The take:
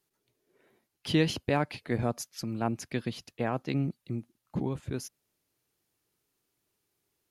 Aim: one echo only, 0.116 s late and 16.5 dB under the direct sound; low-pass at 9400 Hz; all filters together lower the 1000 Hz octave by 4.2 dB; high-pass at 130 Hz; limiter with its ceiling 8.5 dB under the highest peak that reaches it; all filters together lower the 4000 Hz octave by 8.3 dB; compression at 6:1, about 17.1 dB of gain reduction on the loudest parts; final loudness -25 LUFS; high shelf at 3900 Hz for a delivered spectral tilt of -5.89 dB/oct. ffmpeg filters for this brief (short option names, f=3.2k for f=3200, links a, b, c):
-af "highpass=130,lowpass=9.4k,equalizer=f=1k:t=o:g=-5.5,highshelf=f=3.9k:g=-6.5,equalizer=f=4k:t=o:g=-7,acompressor=threshold=-40dB:ratio=6,alimiter=level_in=9.5dB:limit=-24dB:level=0:latency=1,volume=-9.5dB,aecho=1:1:116:0.15,volume=22dB"